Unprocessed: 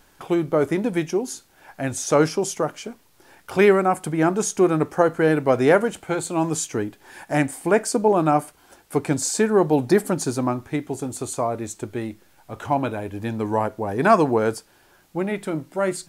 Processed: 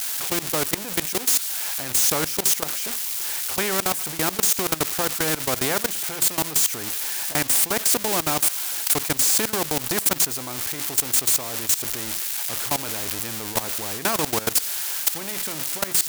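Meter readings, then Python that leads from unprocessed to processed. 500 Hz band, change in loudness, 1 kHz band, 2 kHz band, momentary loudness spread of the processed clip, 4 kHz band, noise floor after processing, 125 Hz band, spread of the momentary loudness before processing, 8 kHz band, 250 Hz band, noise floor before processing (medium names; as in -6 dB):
-10.5 dB, +0.5 dB, -6.0 dB, 0.0 dB, 7 LU, +12.0 dB, -33 dBFS, -8.0 dB, 13 LU, +10.0 dB, -10.0 dB, -57 dBFS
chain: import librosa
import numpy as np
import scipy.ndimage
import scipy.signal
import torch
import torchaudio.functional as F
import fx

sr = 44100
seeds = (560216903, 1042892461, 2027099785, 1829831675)

y = x + 0.5 * 10.0 ** (-14.0 / 20.0) * np.diff(np.sign(x), prepend=np.sign(x[:1]))
y = fx.level_steps(y, sr, step_db=19)
y = fx.spectral_comp(y, sr, ratio=2.0)
y = y * 10.0 ** (6.0 / 20.0)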